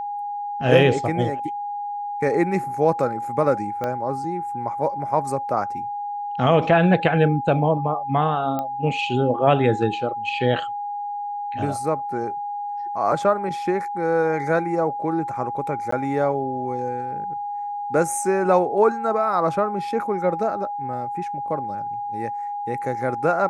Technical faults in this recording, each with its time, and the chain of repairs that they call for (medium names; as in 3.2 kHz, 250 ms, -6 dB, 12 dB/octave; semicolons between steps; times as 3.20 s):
whine 820 Hz -26 dBFS
3.84 s: pop -14 dBFS
8.59 s: pop -14 dBFS
15.91–15.92 s: dropout 14 ms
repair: de-click; band-stop 820 Hz, Q 30; interpolate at 15.91 s, 14 ms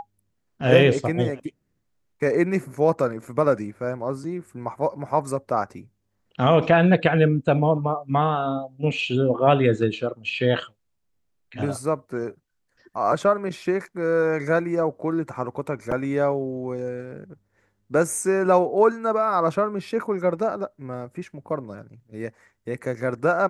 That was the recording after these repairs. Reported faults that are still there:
3.84 s: pop